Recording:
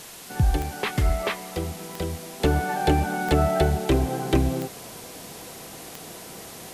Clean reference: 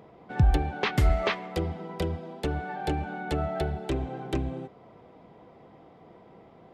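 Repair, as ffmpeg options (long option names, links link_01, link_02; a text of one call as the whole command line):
ffmpeg -i in.wav -af "adeclick=threshold=4,afwtdn=0.0089,asetnsamples=nb_out_samples=441:pad=0,asendcmd='2.4 volume volume -8.5dB',volume=0dB" out.wav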